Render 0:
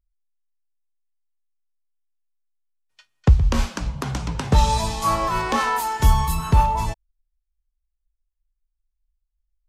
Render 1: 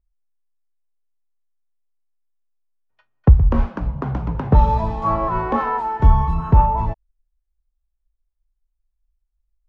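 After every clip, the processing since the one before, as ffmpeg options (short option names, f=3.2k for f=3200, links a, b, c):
-af "lowpass=1.1k,volume=3.5dB"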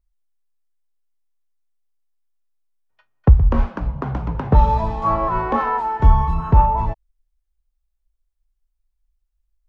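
-af "equalizer=f=160:t=o:w=2.9:g=-3,volume=1.5dB"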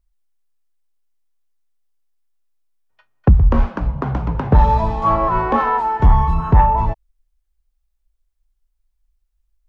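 -af "aeval=exprs='0.891*sin(PI/2*1.41*val(0)/0.891)':c=same,volume=-3.5dB"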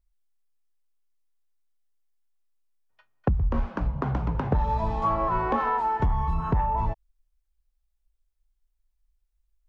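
-af "acompressor=threshold=-16dB:ratio=6,volume=-5dB"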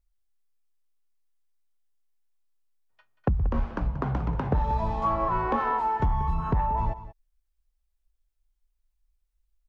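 -af "aecho=1:1:183:0.188,volume=-1dB"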